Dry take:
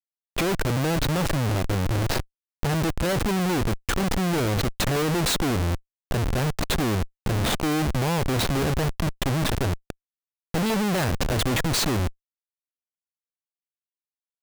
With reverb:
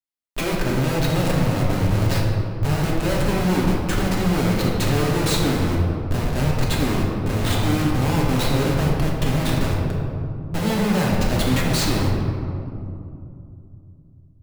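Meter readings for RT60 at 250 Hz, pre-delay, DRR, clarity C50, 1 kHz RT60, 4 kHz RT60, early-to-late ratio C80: 3.6 s, 3 ms, −4.5 dB, 0.5 dB, 2.5 s, 1.2 s, 2.5 dB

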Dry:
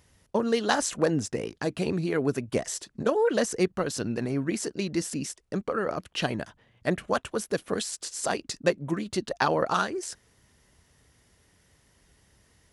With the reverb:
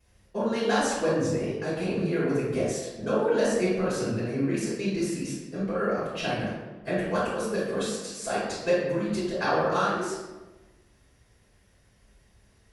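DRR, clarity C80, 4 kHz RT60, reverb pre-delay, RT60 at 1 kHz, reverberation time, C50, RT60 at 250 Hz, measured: −16.5 dB, 2.5 dB, 0.70 s, 3 ms, 1.1 s, 1.2 s, −1.5 dB, 1.4 s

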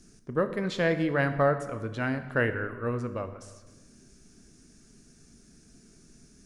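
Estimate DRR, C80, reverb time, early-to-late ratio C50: 8.5 dB, 12.5 dB, 1.3 s, 11.5 dB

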